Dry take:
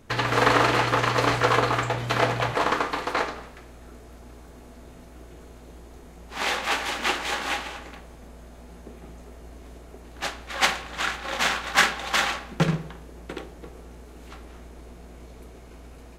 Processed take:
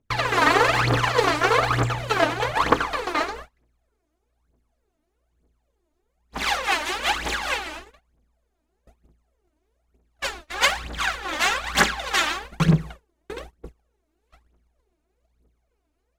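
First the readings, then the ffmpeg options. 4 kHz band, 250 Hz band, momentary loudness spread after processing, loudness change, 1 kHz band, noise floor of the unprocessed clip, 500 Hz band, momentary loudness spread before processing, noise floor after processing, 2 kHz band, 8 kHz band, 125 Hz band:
+1.5 dB, +2.5 dB, 14 LU, +2.0 dB, +1.5 dB, -46 dBFS, +1.5 dB, 18 LU, -74 dBFS, +2.0 dB, +2.0 dB, +3.0 dB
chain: -af "agate=range=-29dB:threshold=-38dB:ratio=16:detection=peak,aphaser=in_gain=1:out_gain=1:delay=3.4:decay=0.77:speed=1.1:type=triangular,volume=-2dB"

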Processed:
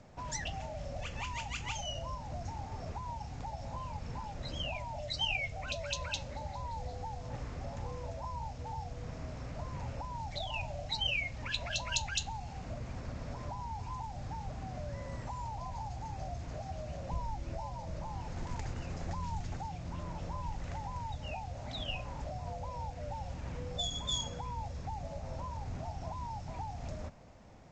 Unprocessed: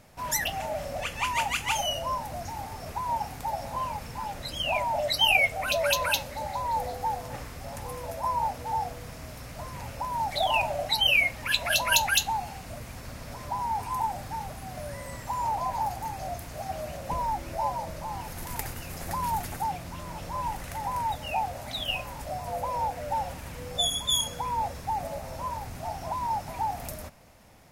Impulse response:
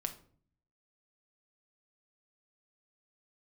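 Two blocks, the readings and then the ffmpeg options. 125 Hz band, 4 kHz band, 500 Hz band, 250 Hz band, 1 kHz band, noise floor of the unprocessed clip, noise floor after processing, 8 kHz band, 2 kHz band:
0.0 dB, -10.0 dB, -10.5 dB, -3.5 dB, -13.0 dB, -42 dBFS, -45 dBFS, -11.0 dB, -13.0 dB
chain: -filter_complex "[0:a]tiltshelf=f=1.4k:g=5.5,acrossover=split=150|2700[a][b][c];[b]acompressor=threshold=-38dB:ratio=6[d];[a][d][c]amix=inputs=3:normalize=0,volume=-4.5dB" -ar 16000 -c:a g722

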